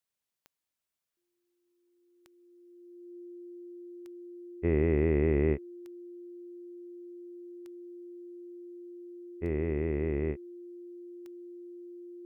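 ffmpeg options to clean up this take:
-af "adeclick=t=4,bandreject=f=350:w=30"

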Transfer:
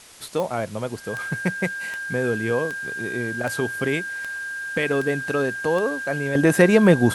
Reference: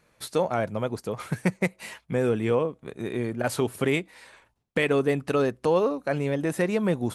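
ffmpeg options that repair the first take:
-af "adeclick=t=4,bandreject=f=1.6k:w=30,afwtdn=0.0056,asetnsamples=n=441:p=0,asendcmd='6.35 volume volume -10dB',volume=0dB"

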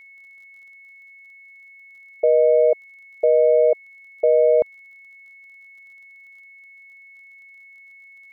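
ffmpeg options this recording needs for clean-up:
-af "adeclick=t=4,bandreject=f=2.2k:w=30"

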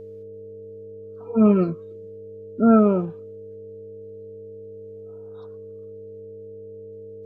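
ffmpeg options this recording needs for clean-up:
-af "bandreject=f=101.6:t=h:w=4,bandreject=f=203.2:t=h:w=4,bandreject=f=304.8:t=h:w=4,bandreject=f=406.4:t=h:w=4,bandreject=f=508:t=h:w=4,bandreject=f=609.6:t=h:w=4,bandreject=f=450:w=30"

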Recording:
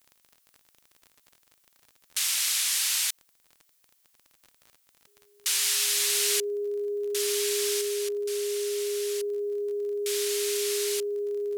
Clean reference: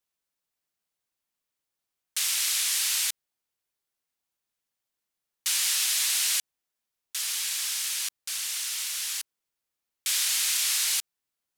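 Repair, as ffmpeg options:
-af "adeclick=t=4,bandreject=f=410:w=30,agate=range=-21dB:threshold=-59dB,asetnsamples=n=441:p=0,asendcmd='7.81 volume volume 6dB',volume=0dB"

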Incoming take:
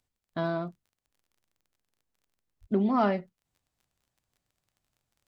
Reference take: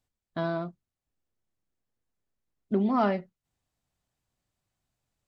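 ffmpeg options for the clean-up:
-filter_complex "[0:a]adeclick=t=4,asplit=3[a][b][c];[a]afade=t=out:st=2.6:d=0.02[d];[b]highpass=f=140:w=0.5412,highpass=f=140:w=1.3066,afade=t=in:st=2.6:d=0.02,afade=t=out:st=2.72:d=0.02[e];[c]afade=t=in:st=2.72:d=0.02[f];[d][e][f]amix=inputs=3:normalize=0"

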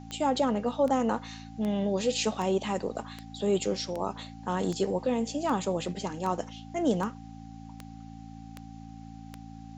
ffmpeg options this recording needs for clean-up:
-af "adeclick=t=4,bandreject=f=55.8:t=h:w=4,bandreject=f=111.6:t=h:w=4,bandreject=f=167.4:t=h:w=4,bandreject=f=223.2:t=h:w=4,bandreject=f=279:t=h:w=4,bandreject=f=780:w=30,agate=range=-21dB:threshold=-37dB"

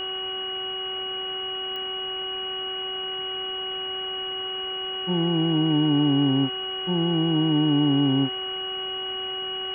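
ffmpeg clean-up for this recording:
-af "adeclick=t=4,bandreject=f=378.1:t=h:w=4,bandreject=f=756.2:t=h:w=4,bandreject=f=1.1343k:t=h:w=4,bandreject=f=1.5124k:t=h:w=4,bandreject=f=2.9k:w=30,afwtdn=0.013"

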